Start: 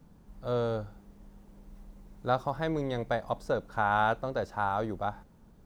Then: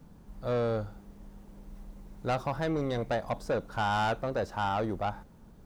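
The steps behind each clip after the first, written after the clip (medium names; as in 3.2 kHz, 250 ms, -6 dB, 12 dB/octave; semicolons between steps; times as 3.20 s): saturation -27 dBFS, distortion -10 dB; trim +3.5 dB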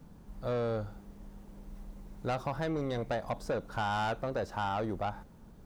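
compression 2:1, threshold -32 dBFS, peak gain reduction 4 dB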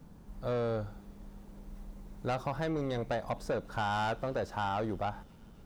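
feedback echo behind a high-pass 268 ms, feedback 77%, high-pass 2.6 kHz, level -22.5 dB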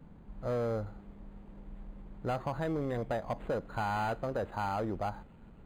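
decimation joined by straight lines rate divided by 8×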